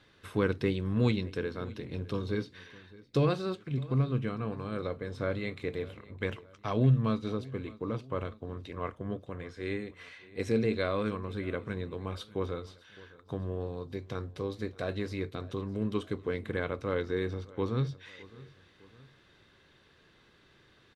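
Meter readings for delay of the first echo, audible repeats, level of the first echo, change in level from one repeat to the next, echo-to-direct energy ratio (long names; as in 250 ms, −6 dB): 611 ms, 2, −21.0 dB, −6.0 dB, −20.0 dB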